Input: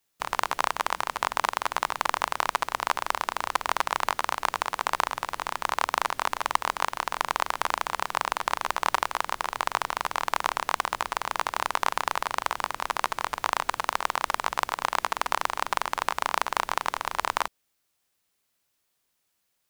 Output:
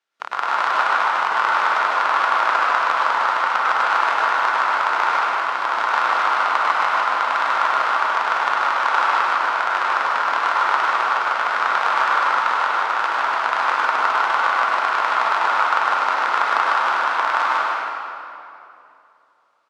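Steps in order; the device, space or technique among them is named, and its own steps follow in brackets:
station announcement (band-pass filter 390–4,000 Hz; parametric band 1,400 Hz +9.5 dB 0.29 octaves; loudspeakers that aren't time-aligned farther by 33 metres −11 dB, 52 metres −4 dB; convolution reverb RT60 2.8 s, pre-delay 95 ms, DRR −5.5 dB)
level −1 dB

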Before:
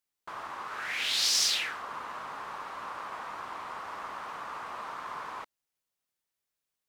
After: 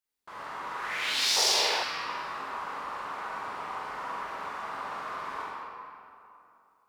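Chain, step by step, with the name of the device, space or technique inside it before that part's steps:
tunnel (flutter between parallel walls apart 7.6 metres, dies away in 0.4 s; convolution reverb RT60 2.8 s, pre-delay 18 ms, DRR −6 dB)
0:01.36–0:01.83: flat-topped bell 590 Hz +13.5 dB
level −5 dB

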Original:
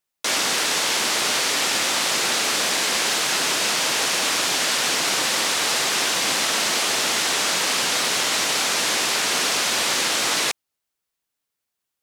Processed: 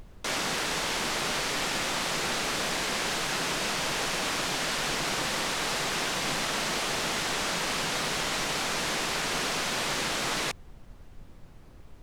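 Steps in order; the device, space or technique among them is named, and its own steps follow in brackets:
car interior (parametric band 150 Hz +9 dB 0.81 octaves; high-shelf EQ 3,000 Hz −7.5 dB; brown noise bed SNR 15 dB)
level −5 dB

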